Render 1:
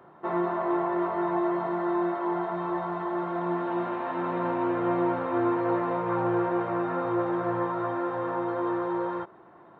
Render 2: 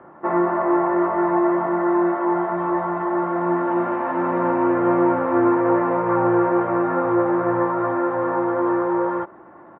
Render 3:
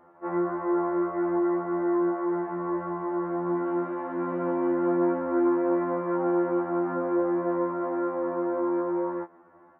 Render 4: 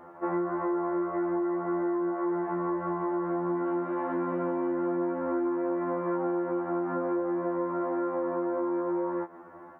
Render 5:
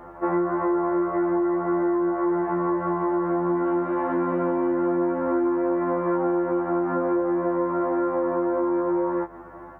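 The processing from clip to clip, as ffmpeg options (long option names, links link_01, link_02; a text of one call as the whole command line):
ffmpeg -i in.wav -af "lowpass=frequency=2200:width=0.5412,lowpass=frequency=2200:width=1.3066,aecho=1:1:3.5:0.32,volume=7.5dB" out.wav
ffmpeg -i in.wav -af "bass=frequency=250:gain=-2,treble=frequency=4000:gain=-3,afftfilt=real='re*2*eq(mod(b,4),0)':imag='im*2*eq(mod(b,4),0)':win_size=2048:overlap=0.75,volume=-8.5dB" out.wav
ffmpeg -i in.wav -af "acompressor=threshold=-35dB:ratio=6,volume=7.5dB" out.wav
ffmpeg -i in.wav -af "aeval=exprs='val(0)+0.000891*(sin(2*PI*50*n/s)+sin(2*PI*2*50*n/s)/2+sin(2*PI*3*50*n/s)/3+sin(2*PI*4*50*n/s)/4+sin(2*PI*5*50*n/s)/5)':channel_layout=same,volume=6dB" out.wav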